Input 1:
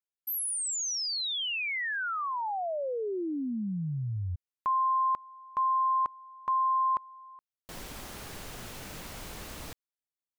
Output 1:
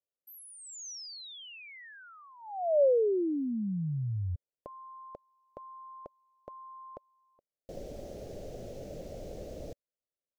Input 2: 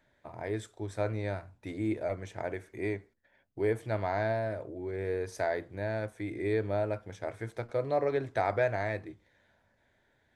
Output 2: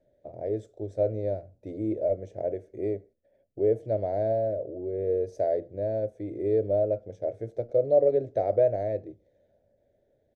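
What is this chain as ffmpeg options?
-af "firequalizer=gain_entry='entry(260,0);entry(570,11);entry(980,-22);entry(1900,-17);entry(6100,-10);entry(9000,-18)':delay=0.05:min_phase=1"

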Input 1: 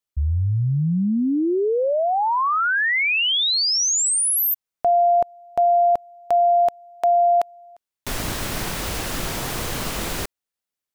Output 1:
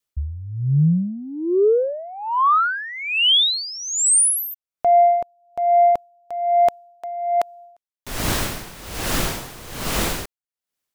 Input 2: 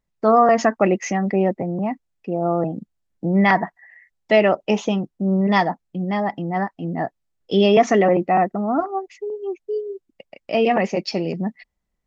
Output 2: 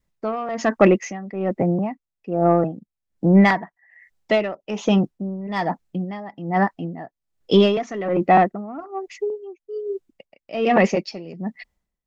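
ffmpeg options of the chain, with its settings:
-af "acontrast=52,adynamicequalizer=threshold=0.0562:dfrequency=750:dqfactor=3.2:tfrequency=750:tqfactor=3.2:attack=5:release=100:ratio=0.375:range=3:mode=cutabove:tftype=bell,aeval=exprs='val(0)*pow(10,-18*(0.5-0.5*cos(2*PI*1.2*n/s))/20)':c=same"

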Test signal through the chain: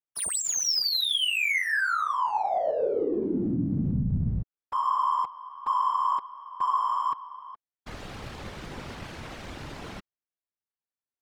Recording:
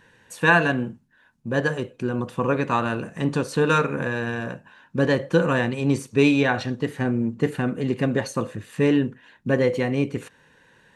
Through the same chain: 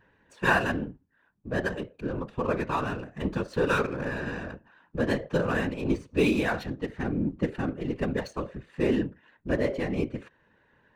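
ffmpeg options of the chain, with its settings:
-af "adynamicsmooth=sensitivity=6.5:basefreq=2400,afftfilt=real='hypot(re,im)*cos(2*PI*random(0))':imag='hypot(re,im)*sin(2*PI*random(1))':win_size=512:overlap=0.75"

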